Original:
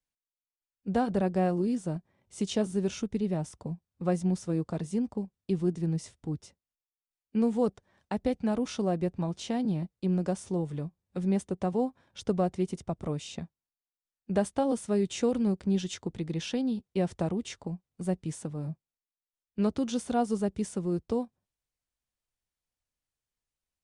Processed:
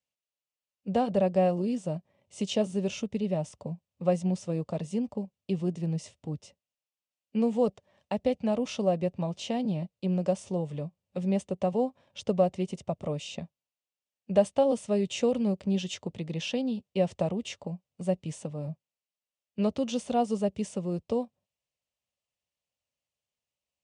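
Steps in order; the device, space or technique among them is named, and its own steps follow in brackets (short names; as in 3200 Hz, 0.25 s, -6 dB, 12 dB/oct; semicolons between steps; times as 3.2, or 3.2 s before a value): car door speaker (speaker cabinet 88–8700 Hz, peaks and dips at 330 Hz -6 dB, 580 Hz +9 dB, 1500 Hz -8 dB, 2800 Hz +7 dB)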